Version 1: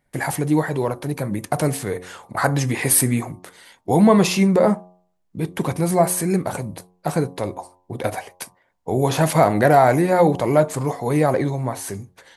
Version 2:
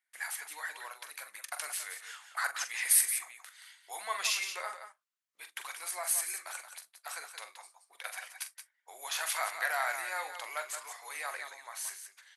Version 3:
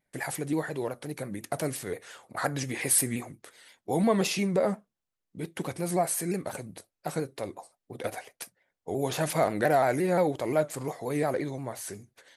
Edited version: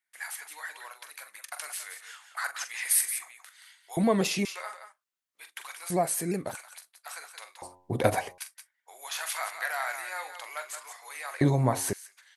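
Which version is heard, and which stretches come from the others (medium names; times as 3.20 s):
2
3.97–4.45 s: from 3
5.90–6.55 s: from 3
7.62–8.38 s: from 1
11.41–11.93 s: from 1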